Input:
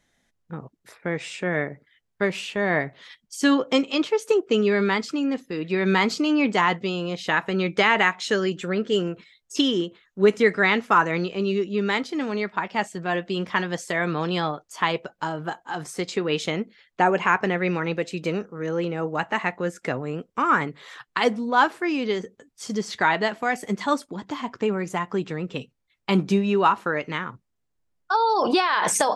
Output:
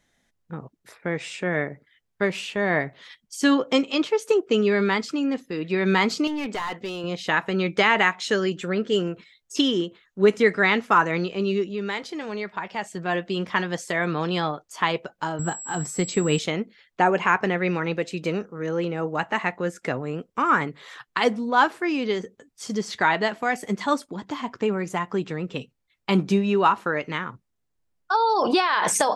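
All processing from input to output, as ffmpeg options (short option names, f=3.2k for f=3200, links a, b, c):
-filter_complex "[0:a]asettb=1/sr,asplit=3[a][b][c];[a]atrim=end=6.274[d];[b]atrim=start=6.27:end=7.04,asetpts=PTS-STARTPTS,afade=t=in:d=0.004:c=qsin,afade=t=out:st=0.766:d=0.004:c=qsin,equalizer=f=150:w=1.7:g=-8,aeval=exprs='clip(val(0),-1,0.075)':c=same,acompressor=threshold=-29dB:ratio=2:attack=3.2:release=140:knee=1:detection=peak[e];[c]atrim=start=7.036[f];[d][e]acrossfade=d=0.004:c1=hsin:c2=qsin[g];[g][f]acrossfade=d=0.004:c1=qsin:c2=hsin,asettb=1/sr,asplit=3[h][i][j];[h]atrim=end=11.704[k];[i]atrim=start=11.7:end=12.9,asetpts=PTS-STARTPTS,afade=t=in:d=0.004:c=qsin,afade=t=out:st=1.196:d=0.004:c=qsin,equalizer=f=260:w=4.2:g=-10.5,bandreject=f=1.3k:w=21,acompressor=threshold=-31dB:ratio=1.5:attack=3.2:release=140:knee=1:detection=peak[l];[j]atrim=start=12.896[m];[k][l]acrossfade=d=0.004:c1=hsin:c2=qsin[n];[n][m]acrossfade=d=0.004:c1=qsin:c2=hsin,asettb=1/sr,asplit=3[o][p][q];[o]atrim=end=15.394[r];[p]atrim=start=15.39:end=16.39,asetpts=PTS-STARTPTS,afade=t=in:d=0.004:c=qsin,afade=t=out:st=0.996:d=0.004:c=qsin,bass=f=250:g=10,treble=f=4k:g=-1,aeval=exprs='val(0)+0.02*sin(2*PI*7700*n/s)':c=same[s];[q]atrim=start=16.386[t];[r][s]acrossfade=d=0.004:c1=hsin:c2=qsin[u];[u][t]acrossfade=d=0.004:c1=qsin:c2=hsin"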